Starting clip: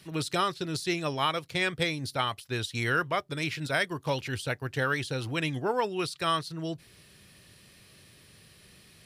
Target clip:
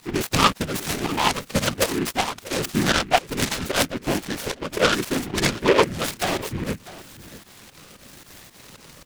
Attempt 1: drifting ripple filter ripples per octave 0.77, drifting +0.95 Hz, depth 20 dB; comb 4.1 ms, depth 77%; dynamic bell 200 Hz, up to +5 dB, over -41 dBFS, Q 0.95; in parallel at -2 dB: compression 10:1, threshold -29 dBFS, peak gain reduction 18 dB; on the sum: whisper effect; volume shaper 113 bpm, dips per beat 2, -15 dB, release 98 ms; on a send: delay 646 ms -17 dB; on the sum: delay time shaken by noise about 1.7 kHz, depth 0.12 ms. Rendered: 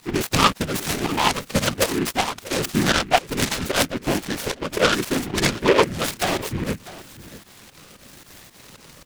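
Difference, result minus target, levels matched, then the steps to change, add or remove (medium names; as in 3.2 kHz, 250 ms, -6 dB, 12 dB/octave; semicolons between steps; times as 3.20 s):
compression: peak gain reduction -9 dB
change: compression 10:1, threshold -39 dBFS, peak gain reduction 27 dB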